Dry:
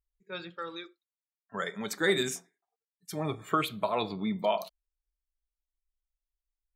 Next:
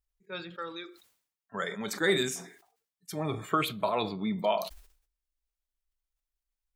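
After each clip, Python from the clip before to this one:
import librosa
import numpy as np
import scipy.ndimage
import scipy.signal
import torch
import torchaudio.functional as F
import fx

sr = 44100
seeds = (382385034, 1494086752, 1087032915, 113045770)

y = fx.sustainer(x, sr, db_per_s=100.0)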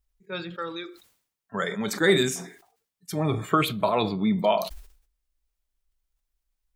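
y = fx.low_shelf(x, sr, hz=290.0, db=5.5)
y = F.gain(torch.from_numpy(y), 4.5).numpy()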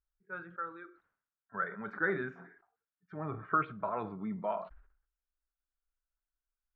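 y = fx.ladder_lowpass(x, sr, hz=1600.0, resonance_pct=70)
y = F.gain(torch.from_numpy(y), -3.0).numpy()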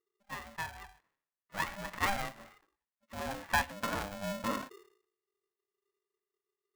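y = x * np.sign(np.sin(2.0 * np.pi * 400.0 * np.arange(len(x)) / sr))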